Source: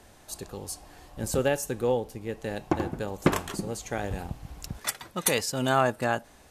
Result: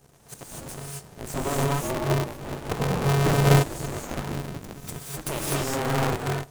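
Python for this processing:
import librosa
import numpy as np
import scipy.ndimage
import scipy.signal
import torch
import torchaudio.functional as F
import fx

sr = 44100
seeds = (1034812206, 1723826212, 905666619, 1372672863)

y = fx.lower_of_two(x, sr, delay_ms=0.84, at=(4.14, 5.29))
y = fx.band_shelf(y, sr, hz=1900.0, db=-8.5, octaves=2.8)
y = np.maximum(y, 0.0)
y = fx.room_flutter(y, sr, wall_m=5.9, rt60_s=1.2, at=(2.79, 3.36), fade=0.02)
y = fx.rev_gated(y, sr, seeds[0], gate_ms=280, shape='rising', drr_db=-4.5)
y = y * np.sign(np.sin(2.0 * np.pi * 140.0 * np.arange(len(y)) / sr))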